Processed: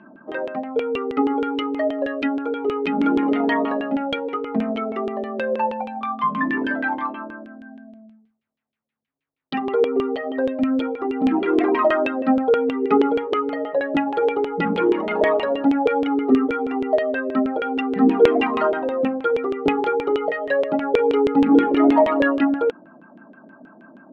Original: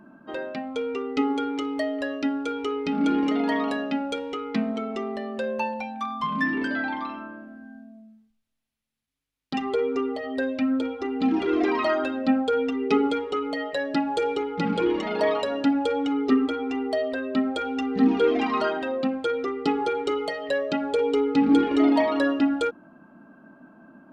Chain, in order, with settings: high-pass 140 Hz 12 dB/octave; LFO low-pass saw down 6.3 Hz 400–3100 Hz; trim +2.5 dB

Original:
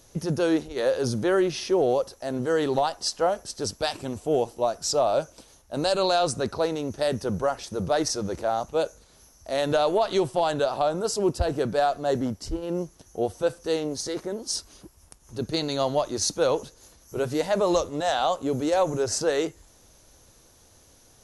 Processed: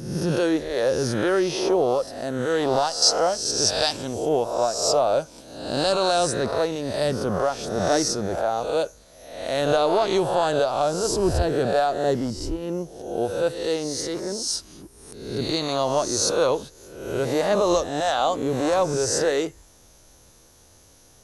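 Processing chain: reverse spectral sustain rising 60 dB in 0.85 s; 3.02–4.29 s: peaking EQ 5.5 kHz +9 dB 1 oct

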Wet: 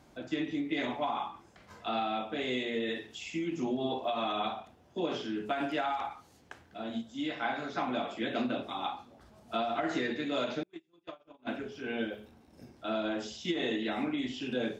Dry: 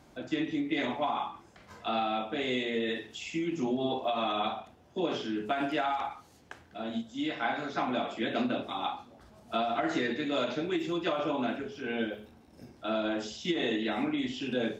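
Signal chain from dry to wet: 10.63–11.47 s: gate -26 dBFS, range -40 dB; trim -2 dB

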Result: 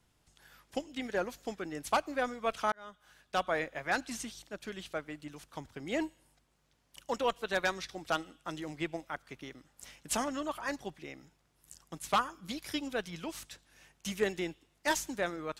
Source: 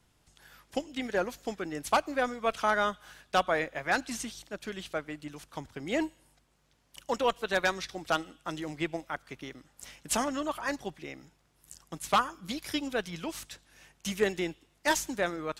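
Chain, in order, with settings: 2.72–3.56 s: fade in; 4.89–5.74 s: crackle 210 per s -62 dBFS; trim -3.5 dB

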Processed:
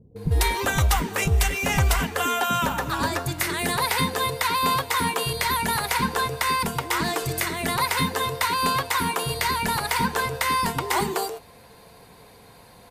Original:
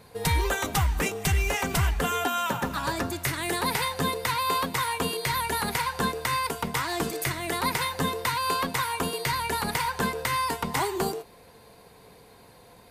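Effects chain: bands offset in time lows, highs 160 ms, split 380 Hz; trim +4 dB; AAC 128 kbps 48 kHz

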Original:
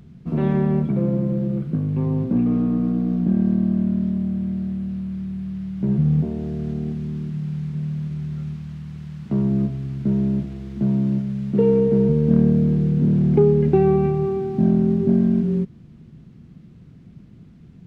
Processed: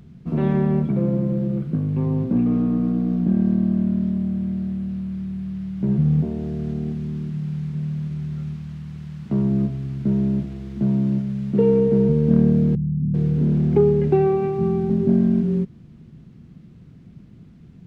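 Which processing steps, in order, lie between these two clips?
12.75–14.90 s: bands offset in time lows, highs 390 ms, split 190 Hz

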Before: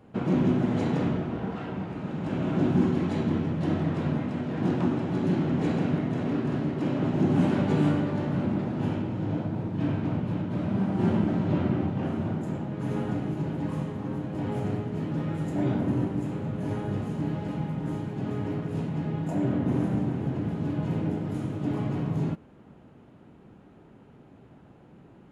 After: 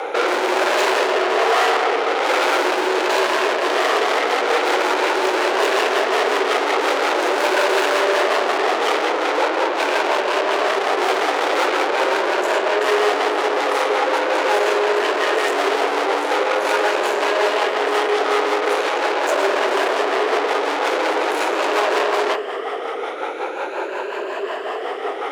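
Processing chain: drifting ripple filter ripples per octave 1.4, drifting +0.43 Hz, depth 9 dB; rotary cabinet horn 1.1 Hz, later 5.5 Hz, at 3.40 s; overdrive pedal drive 43 dB, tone 3.8 kHz, clips at -12 dBFS; elliptic high-pass 400 Hz, stop band 70 dB; trim +4.5 dB

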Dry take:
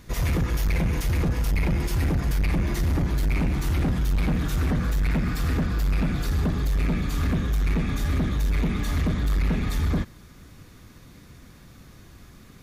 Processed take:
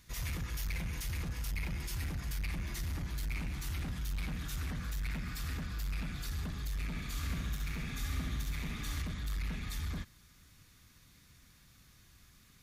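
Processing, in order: amplifier tone stack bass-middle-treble 5-5-5; 6.87–9.02 s: flutter echo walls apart 11.8 m, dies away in 0.87 s

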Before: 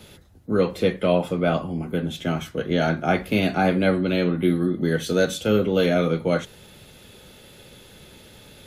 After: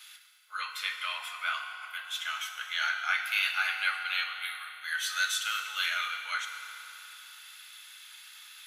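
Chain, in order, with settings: steep high-pass 1.2 kHz 36 dB/octave; FDN reverb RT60 3.3 s, high-frequency decay 0.7×, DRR 4 dB

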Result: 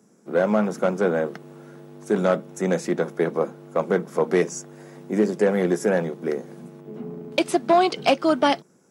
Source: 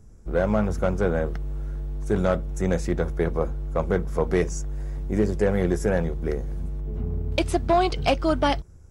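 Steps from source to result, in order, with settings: steep high-pass 180 Hz 36 dB/octave; trim +3 dB

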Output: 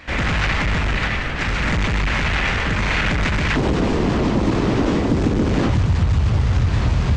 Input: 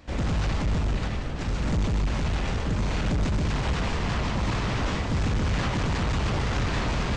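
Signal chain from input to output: peaking EQ 2 kHz +14.5 dB 1.7 oct, from 3.56 s 320 Hz, from 5.70 s 85 Hz; compression, threshold -18 dBFS, peak gain reduction 7 dB; trim +4.5 dB

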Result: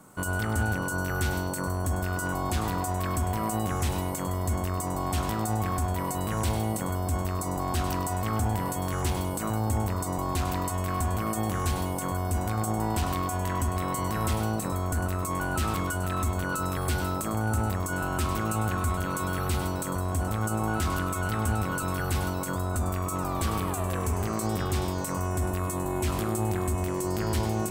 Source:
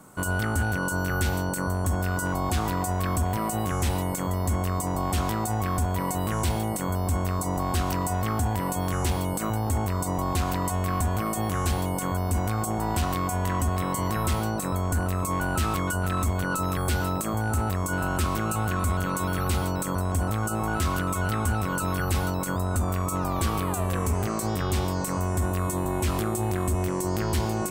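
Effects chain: bit-crushed delay 101 ms, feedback 35%, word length 9-bit, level -10 dB; trim -2.5 dB

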